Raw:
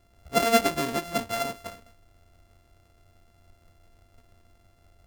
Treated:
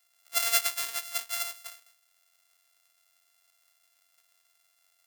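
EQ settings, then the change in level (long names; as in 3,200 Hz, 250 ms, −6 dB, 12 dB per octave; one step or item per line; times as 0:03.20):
high-pass filter 1,200 Hz 12 dB per octave
high-shelf EQ 2,100 Hz +10 dB
high-shelf EQ 7,900 Hz +7 dB
−8.5 dB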